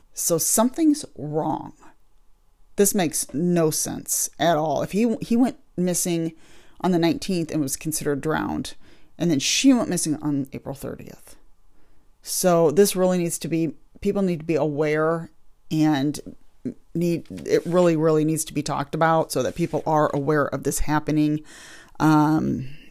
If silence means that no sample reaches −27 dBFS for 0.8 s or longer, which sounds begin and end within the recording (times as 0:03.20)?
0:02.78–0:11.11